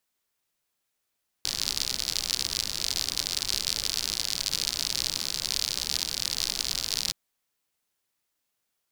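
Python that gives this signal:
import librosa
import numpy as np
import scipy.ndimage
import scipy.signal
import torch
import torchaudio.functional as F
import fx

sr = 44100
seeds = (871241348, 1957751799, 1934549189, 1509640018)

y = fx.rain(sr, seeds[0], length_s=5.67, drops_per_s=76.0, hz=4600.0, bed_db=-12.5)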